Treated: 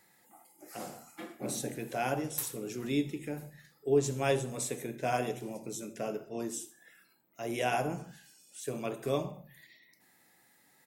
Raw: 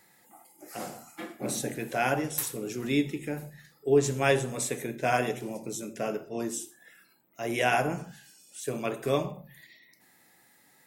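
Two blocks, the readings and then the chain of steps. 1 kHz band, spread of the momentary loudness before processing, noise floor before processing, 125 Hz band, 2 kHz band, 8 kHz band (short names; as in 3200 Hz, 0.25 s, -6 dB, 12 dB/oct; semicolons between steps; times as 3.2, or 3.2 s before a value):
-5.0 dB, 15 LU, -63 dBFS, -4.0 dB, -8.5 dB, -4.0 dB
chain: dynamic EQ 1800 Hz, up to -6 dB, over -45 dBFS, Q 1.3; on a send: feedback echo 71 ms, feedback 47%, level -22 dB; on the sum: gain -4 dB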